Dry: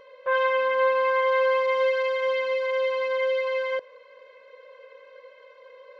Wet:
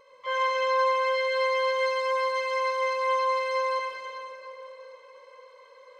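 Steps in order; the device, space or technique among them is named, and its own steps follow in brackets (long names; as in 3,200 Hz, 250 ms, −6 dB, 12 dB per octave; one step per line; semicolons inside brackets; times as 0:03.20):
shimmer-style reverb (pitch-shifted copies added +12 semitones −6 dB; convolution reverb RT60 3.4 s, pre-delay 97 ms, DRR −2 dB)
level −8 dB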